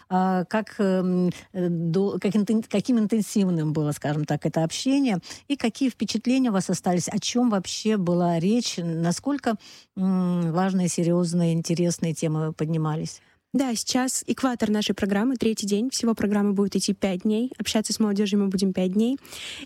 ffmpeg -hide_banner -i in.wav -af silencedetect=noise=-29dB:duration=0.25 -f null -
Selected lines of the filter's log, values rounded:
silence_start: 9.55
silence_end: 9.97 | silence_duration: 0.42
silence_start: 13.12
silence_end: 13.54 | silence_duration: 0.43